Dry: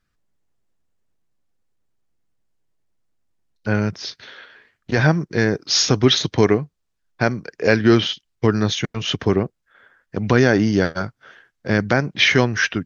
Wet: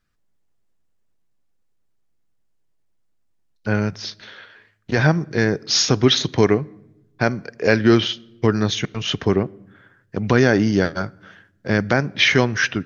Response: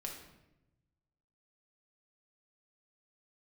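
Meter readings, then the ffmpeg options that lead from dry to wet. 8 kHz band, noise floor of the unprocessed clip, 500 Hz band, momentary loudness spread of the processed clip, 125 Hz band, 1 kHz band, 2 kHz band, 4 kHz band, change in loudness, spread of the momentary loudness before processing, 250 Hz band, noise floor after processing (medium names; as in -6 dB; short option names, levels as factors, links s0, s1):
no reading, -74 dBFS, -0.5 dB, 14 LU, -0.5 dB, -0.5 dB, -0.5 dB, -0.5 dB, -0.5 dB, 14 LU, -0.5 dB, -64 dBFS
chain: -filter_complex "[0:a]asplit=2[s0][s1];[1:a]atrim=start_sample=2205[s2];[s1][s2]afir=irnorm=-1:irlink=0,volume=0.133[s3];[s0][s3]amix=inputs=2:normalize=0,volume=0.891"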